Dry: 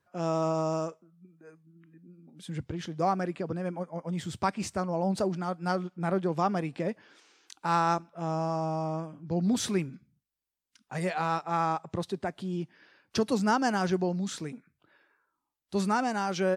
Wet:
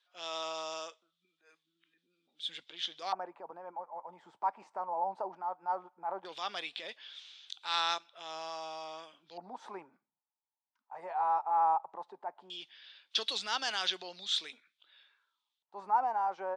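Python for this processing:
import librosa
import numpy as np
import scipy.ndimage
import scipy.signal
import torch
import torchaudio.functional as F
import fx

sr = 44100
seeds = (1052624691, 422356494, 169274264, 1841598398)

y = scipy.signal.sosfilt(scipy.signal.butter(2, 470.0, 'highpass', fs=sr, output='sos'), x)
y = fx.tilt_eq(y, sr, slope=3.5)
y = fx.transient(y, sr, attack_db=-6, sustain_db=2)
y = fx.high_shelf(y, sr, hz=4000.0, db=9.0)
y = fx.filter_lfo_lowpass(y, sr, shape='square', hz=0.16, low_hz=890.0, high_hz=3500.0, q=6.9)
y = y * 10.0 ** (-8.5 / 20.0)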